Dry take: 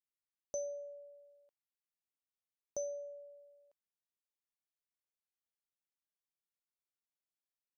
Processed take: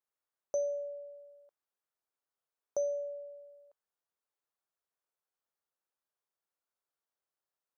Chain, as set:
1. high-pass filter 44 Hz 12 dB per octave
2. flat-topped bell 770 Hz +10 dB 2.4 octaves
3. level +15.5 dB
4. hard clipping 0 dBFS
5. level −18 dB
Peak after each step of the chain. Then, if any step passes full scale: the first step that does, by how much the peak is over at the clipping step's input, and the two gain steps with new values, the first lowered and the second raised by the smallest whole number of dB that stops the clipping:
−29.0, −21.5, −6.0, −6.0, −24.0 dBFS
no step passes full scale

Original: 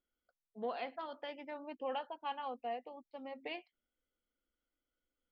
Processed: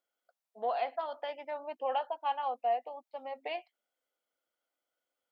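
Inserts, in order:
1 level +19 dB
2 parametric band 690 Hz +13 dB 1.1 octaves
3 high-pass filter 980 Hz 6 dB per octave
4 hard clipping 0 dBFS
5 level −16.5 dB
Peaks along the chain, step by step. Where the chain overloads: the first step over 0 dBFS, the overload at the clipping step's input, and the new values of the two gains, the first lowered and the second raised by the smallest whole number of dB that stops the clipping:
−9.0, −0.5, −4.5, −4.5, −21.0 dBFS
no step passes full scale

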